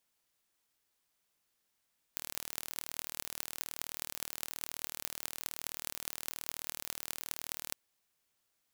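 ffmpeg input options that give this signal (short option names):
-f lavfi -i "aevalsrc='0.422*eq(mod(n,1134),0)*(0.5+0.5*eq(mod(n,9072),0))':d=5.57:s=44100"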